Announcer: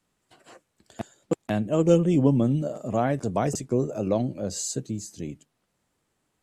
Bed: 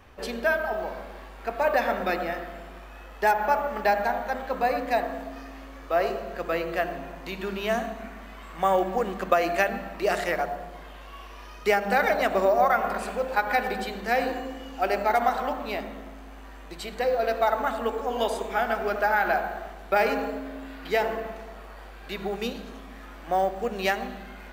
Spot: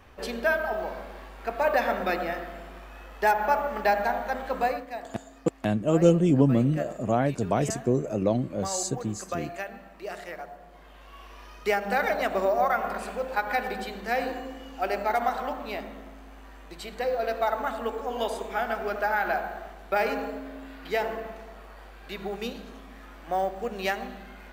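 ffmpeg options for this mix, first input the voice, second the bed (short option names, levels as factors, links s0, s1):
-filter_complex "[0:a]adelay=4150,volume=1[s0];[1:a]volume=2.66,afade=t=out:st=4.63:d=0.23:silence=0.266073,afade=t=in:st=10.59:d=0.73:silence=0.354813[s1];[s0][s1]amix=inputs=2:normalize=0"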